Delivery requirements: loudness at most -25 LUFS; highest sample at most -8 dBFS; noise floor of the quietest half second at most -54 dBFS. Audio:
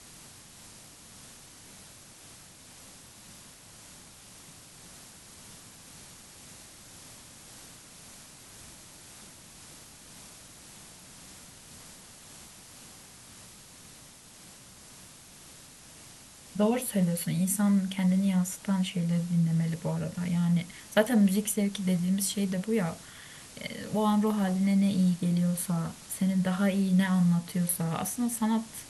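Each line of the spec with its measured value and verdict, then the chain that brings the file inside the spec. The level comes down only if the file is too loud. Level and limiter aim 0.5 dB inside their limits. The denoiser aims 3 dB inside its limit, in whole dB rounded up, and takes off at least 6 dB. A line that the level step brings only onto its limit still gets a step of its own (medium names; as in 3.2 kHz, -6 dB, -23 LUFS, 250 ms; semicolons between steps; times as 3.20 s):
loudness -28.0 LUFS: pass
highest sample -10.0 dBFS: pass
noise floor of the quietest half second -51 dBFS: fail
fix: noise reduction 6 dB, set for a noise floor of -51 dBFS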